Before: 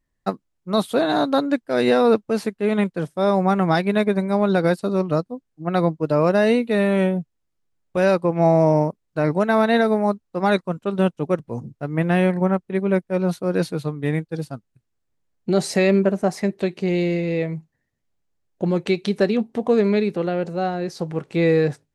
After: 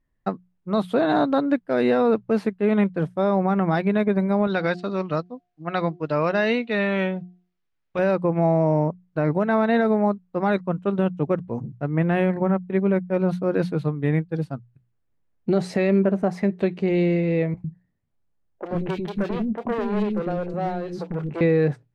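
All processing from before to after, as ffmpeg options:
ffmpeg -i in.wav -filter_complex "[0:a]asettb=1/sr,asplit=3[link_01][link_02][link_03];[link_01]atrim=end=4.474[link_04];[link_02]atrim=start=4.47:end=7.99,asetpts=PTS-STARTPTS,afade=type=in:duration=0.004:curve=qsin,afade=type=out:start_time=3.516:duration=0.004:curve=qsin,lowpass=frequency=6300:width=0.5412,lowpass=frequency=6300:width=1.3066,tiltshelf=frequency=1200:gain=-7.5,bandreject=frequency=356.2:width_type=h:width=4,bandreject=frequency=712.4:width_type=h:width=4[link_05];[link_03]atrim=start=7.986[link_06];[link_04][link_05]acrossfade=duration=0.004:curve1=hsin:curve2=qsin[link_07];[link_07][link_06]acrossfade=duration=0.004:curve1=qsin:curve2=hsin,asettb=1/sr,asplit=3[link_08][link_09][link_10];[link_08]atrim=end=17.544[link_11];[link_09]atrim=start=17.54:end=21.41,asetpts=PTS-STARTPTS,afade=type=in:duration=0.004:curve=qsin,afade=type=out:start_time=3.866:duration=0.004:curve=qsin,asoftclip=type=hard:threshold=-21dB,acrossover=split=350|2300[link_12][link_13][link_14];[link_14]adelay=30[link_15];[link_12]adelay=100[link_16];[link_16][link_13][link_15]amix=inputs=3:normalize=0,atrim=end_sample=170667[link_17];[link_10]atrim=start=21.406[link_18];[link_11][link_17]acrossfade=duration=0.004:curve1=hsin:curve2=qsin[link_19];[link_19][link_18]acrossfade=duration=0.004:curve1=qsin:curve2=hsin,bass=frequency=250:gain=3,treble=frequency=4000:gain=-15,bandreject=frequency=60:width_type=h:width=6,bandreject=frequency=120:width_type=h:width=6,bandreject=frequency=180:width_type=h:width=6,alimiter=limit=-10.5dB:level=0:latency=1:release=81" out.wav

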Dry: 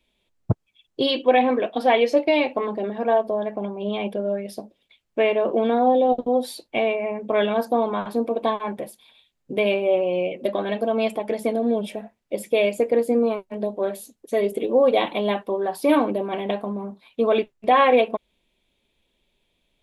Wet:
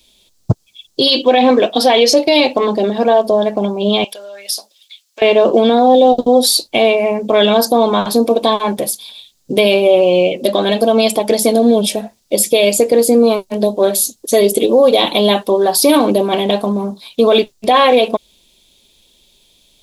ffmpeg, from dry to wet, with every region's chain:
ffmpeg -i in.wav -filter_complex "[0:a]asettb=1/sr,asplit=3[link_01][link_02][link_03];[link_01]atrim=end=4.044[link_04];[link_02]atrim=start=4.04:end=5.22,asetpts=PTS-STARTPTS,afade=type=in:duration=0.004:curve=qsin,afade=type=out:start_time=1.176:duration=0.004:curve=qsin,highpass=1400,acompressor=threshold=-40dB:ratio=6:attack=3.2:release=140:knee=1:detection=peak[link_05];[link_03]atrim=start=5.216[link_06];[link_04][link_05]acrossfade=duration=0.004:curve1=hsin:curve2=qsin[link_07];[link_07][link_06]acrossfade=duration=0.004:curve1=qsin:curve2=hsin,highshelf=frequency=3200:width_type=q:width=1.5:gain=13,alimiter=level_in=13dB:limit=-1dB:release=50:level=0:latency=1,volume=-1dB" out.wav

